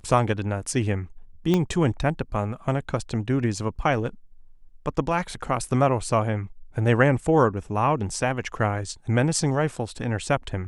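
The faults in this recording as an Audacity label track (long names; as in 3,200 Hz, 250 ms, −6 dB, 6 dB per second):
1.540000	1.540000	click −10 dBFS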